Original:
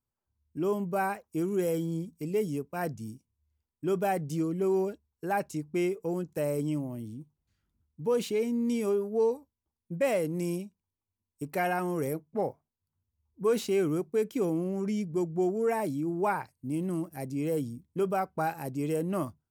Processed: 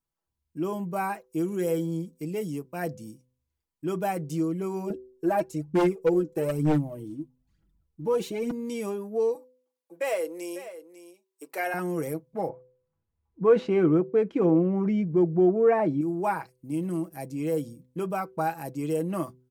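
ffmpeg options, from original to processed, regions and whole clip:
ffmpeg -i in.wav -filter_complex "[0:a]asettb=1/sr,asplit=3[link_01][link_02][link_03];[link_01]atrim=end=4.904[link_04];[link_02]atrim=start=4.9:end=8.51,asetpts=PTS-STARTPTS,afade=type=in:duration=0.004:curve=qsin,afade=type=out:start_time=3.606:duration=0.004:curve=qsin,tiltshelf=frequency=870:gain=5,aphaser=in_gain=1:out_gain=1:delay=3.5:decay=0.63:speed=1.1:type=triangular,aeval=exprs='0.133*(abs(mod(val(0)/0.133+3,4)-2)-1)':channel_layout=same[link_05];[link_03]atrim=start=8.506[link_06];[link_04][link_05]acrossfade=duration=0.004:curve1=hsin:curve2=qsin[link_07];[link_07][link_06]acrossfade=duration=0.004:curve1=qsin:curve2=hsin,asettb=1/sr,asplit=3[link_08][link_09][link_10];[link_08]atrim=end=9.354[link_11];[link_09]atrim=start=9.35:end=11.74,asetpts=PTS-STARTPTS,afade=type=in:duration=0.004:curve=qsin,afade=type=out:start_time=2.386:duration=0.004:curve=qsin,highpass=frequency=390:width=0.5412,highpass=frequency=390:width=1.3066,aecho=1:1:547:0.211,atrim=end_sample=105399[link_12];[link_10]atrim=start=11.736[link_13];[link_11][link_12]acrossfade=duration=0.004:curve1=hsin:curve2=qsin[link_14];[link_14][link_13]acrossfade=duration=0.004:curve1=qsin:curve2=hsin,asettb=1/sr,asplit=3[link_15][link_16][link_17];[link_15]atrim=end=12.494[link_18];[link_16]atrim=start=12.49:end=16.01,asetpts=PTS-STARTPTS,afade=type=in:duration=0.004:curve=qsin,afade=type=out:start_time=3.516:duration=0.004:curve=qsin,lowpass=1800,acontrast=58[link_19];[link_17]atrim=start=16.006[link_20];[link_18][link_19]acrossfade=duration=0.004:curve1=hsin:curve2=qsin[link_21];[link_21][link_20]acrossfade=duration=0.004:curve1=qsin:curve2=hsin,equalizer=frequency=110:width=1.6:gain=-5.5,aecho=1:1:6.1:0.51,bandreject=frequency=126.6:width_type=h:width=4,bandreject=frequency=253.2:width_type=h:width=4,bandreject=frequency=379.8:width_type=h:width=4,bandreject=frequency=506.4:width_type=h:width=4" out.wav

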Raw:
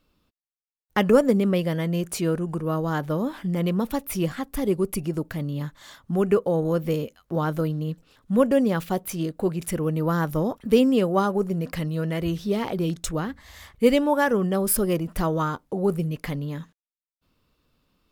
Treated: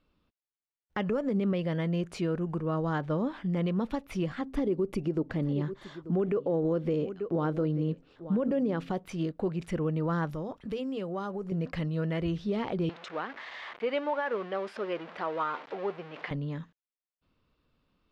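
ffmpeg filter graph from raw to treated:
ffmpeg -i in.wav -filter_complex "[0:a]asettb=1/sr,asplit=3[link_01][link_02][link_03];[link_01]atrim=end=4.414[link_04];[link_02]atrim=start=4.41:end=8.91,asetpts=PTS-STARTPTS,afade=type=in:duration=0.004:curve=qsin,afade=type=out:start_time=4.496:duration=0.004:curve=qsin,equalizer=frequency=360:width_type=o:width=1.5:gain=7.5,bandreject=frequency=133.3:width_type=h:width=4,bandreject=frequency=266.6:width_type=h:width=4,aecho=1:1:886:0.126,atrim=end_sample=198450[link_05];[link_03]atrim=start=8.906[link_06];[link_04][link_05]acrossfade=duration=0.004:curve1=hsin:curve2=qsin[link_07];[link_07][link_06]acrossfade=duration=0.004:curve1=qsin:curve2=hsin,asettb=1/sr,asplit=3[link_08][link_09][link_10];[link_08]atrim=end=10.294[link_11];[link_09]atrim=start=10.29:end=11.52,asetpts=PTS-STARTPTS,afade=type=in:duration=0.004:curve=qsin,afade=type=out:start_time=1.226:duration=0.004:curve=qsin,highshelf=frequency=4100:gain=6.5,bandreject=frequency=240:width=8,acompressor=threshold=-30dB:ratio=3:attack=3.2:release=140:knee=1:detection=peak[link_12];[link_10]atrim=start=11.516[link_13];[link_11][link_12]acrossfade=duration=0.004:curve1=hsin:curve2=qsin[link_14];[link_14][link_13]acrossfade=duration=0.004:curve1=qsin:curve2=hsin,asettb=1/sr,asplit=3[link_15][link_16][link_17];[link_15]atrim=end=12.894[link_18];[link_16]atrim=start=12.89:end=16.31,asetpts=PTS-STARTPTS,afade=type=in:duration=0.004:curve=qsin,afade=type=out:start_time=3.416:duration=0.004:curve=qsin,aeval=exprs='val(0)+0.5*0.0299*sgn(val(0))':channel_layout=same,highpass=550,lowpass=3400[link_19];[link_17]atrim=start=16.306[link_20];[link_18][link_19]acrossfade=duration=0.004:curve1=hsin:curve2=qsin[link_21];[link_21][link_20]acrossfade=duration=0.004:curve1=qsin:curve2=hsin,alimiter=limit=-17dB:level=0:latency=1:release=90,lowpass=3700,volume=-4dB" out.wav

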